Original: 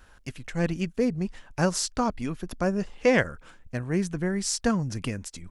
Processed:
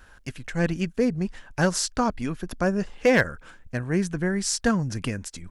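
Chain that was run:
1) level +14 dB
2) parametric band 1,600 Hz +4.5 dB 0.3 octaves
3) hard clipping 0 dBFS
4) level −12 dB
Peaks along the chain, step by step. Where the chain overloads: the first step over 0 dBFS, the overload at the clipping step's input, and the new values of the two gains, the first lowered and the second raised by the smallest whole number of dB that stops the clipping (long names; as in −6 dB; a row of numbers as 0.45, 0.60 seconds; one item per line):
+5.0, +5.5, 0.0, −12.0 dBFS
step 1, 5.5 dB
step 1 +8 dB, step 4 −6 dB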